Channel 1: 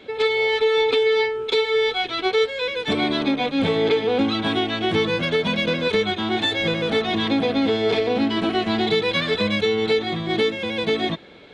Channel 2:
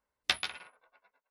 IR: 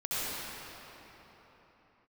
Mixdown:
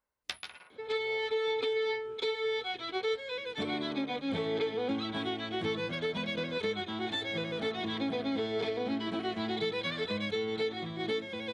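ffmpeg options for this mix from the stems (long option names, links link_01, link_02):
-filter_complex "[0:a]highpass=58,bandreject=frequency=2700:width=14,adelay=700,volume=-12.5dB[link_01];[1:a]acompressor=threshold=-36dB:ratio=2,volume=-3dB[link_02];[link_01][link_02]amix=inputs=2:normalize=0"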